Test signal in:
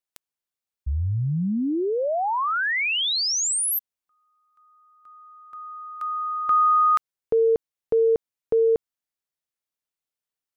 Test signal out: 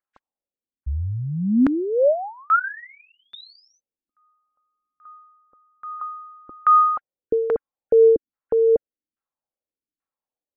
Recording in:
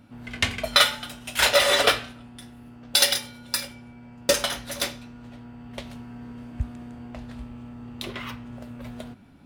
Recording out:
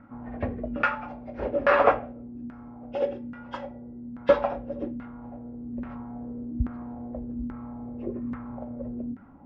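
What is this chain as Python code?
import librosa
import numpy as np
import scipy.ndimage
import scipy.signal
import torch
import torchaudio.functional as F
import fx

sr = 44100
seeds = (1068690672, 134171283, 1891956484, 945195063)

y = fx.freq_compress(x, sr, knee_hz=1400.0, ratio=1.5)
y = y + 0.31 * np.pad(y, (int(3.7 * sr / 1000.0), 0))[:len(y)]
y = fx.filter_lfo_lowpass(y, sr, shape='saw_down', hz=1.2, low_hz=250.0, high_hz=1500.0, q=2.5)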